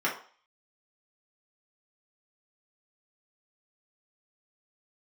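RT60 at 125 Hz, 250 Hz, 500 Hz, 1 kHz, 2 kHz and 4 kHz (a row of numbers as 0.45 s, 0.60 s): 0.30 s, 0.35 s, 0.40 s, 0.45 s, 0.45 s, 0.50 s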